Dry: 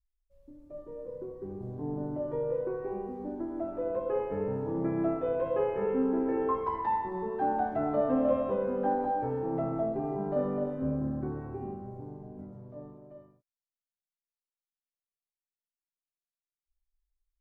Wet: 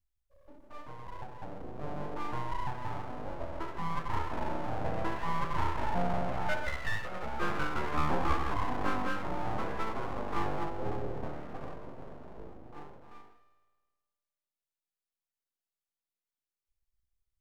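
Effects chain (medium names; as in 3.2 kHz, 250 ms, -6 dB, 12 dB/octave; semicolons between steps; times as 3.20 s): spring tank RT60 1.5 s, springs 52 ms, chirp 45 ms, DRR 7.5 dB; full-wave rectifier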